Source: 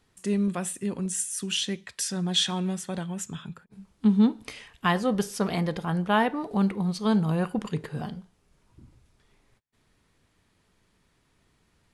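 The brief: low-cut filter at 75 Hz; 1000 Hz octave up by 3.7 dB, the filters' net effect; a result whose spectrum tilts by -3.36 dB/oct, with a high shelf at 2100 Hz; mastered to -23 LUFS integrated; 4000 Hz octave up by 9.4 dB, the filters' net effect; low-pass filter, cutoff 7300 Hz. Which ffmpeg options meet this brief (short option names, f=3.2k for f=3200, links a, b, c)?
-af "highpass=75,lowpass=7.3k,equalizer=f=1k:t=o:g=3,highshelf=f=2.1k:g=6,equalizer=f=4k:t=o:g=6.5,volume=1dB"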